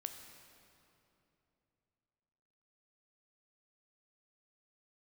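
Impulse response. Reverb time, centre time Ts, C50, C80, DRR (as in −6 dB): 3.0 s, 42 ms, 7.0 dB, 7.5 dB, 6.0 dB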